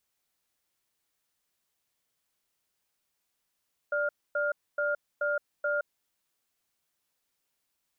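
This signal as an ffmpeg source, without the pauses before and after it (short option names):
-f lavfi -i "aevalsrc='0.0376*(sin(2*PI*587*t)+sin(2*PI*1410*t))*clip(min(mod(t,0.43),0.17-mod(t,0.43))/0.005,0,1)':d=1.97:s=44100"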